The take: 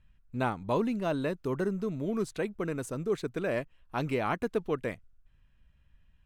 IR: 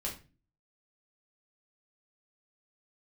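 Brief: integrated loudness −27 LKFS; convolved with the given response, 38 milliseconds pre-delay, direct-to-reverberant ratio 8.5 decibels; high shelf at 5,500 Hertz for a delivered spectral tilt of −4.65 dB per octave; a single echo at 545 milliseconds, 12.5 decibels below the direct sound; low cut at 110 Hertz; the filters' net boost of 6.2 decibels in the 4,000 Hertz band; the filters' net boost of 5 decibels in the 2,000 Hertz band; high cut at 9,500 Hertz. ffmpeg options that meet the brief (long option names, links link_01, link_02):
-filter_complex "[0:a]highpass=110,lowpass=9500,equalizer=frequency=2000:width_type=o:gain=5.5,equalizer=frequency=4000:width_type=o:gain=7.5,highshelf=frequency=5500:gain=-5,aecho=1:1:545:0.237,asplit=2[link_01][link_02];[1:a]atrim=start_sample=2205,adelay=38[link_03];[link_02][link_03]afir=irnorm=-1:irlink=0,volume=-10.5dB[link_04];[link_01][link_04]amix=inputs=2:normalize=0,volume=4dB"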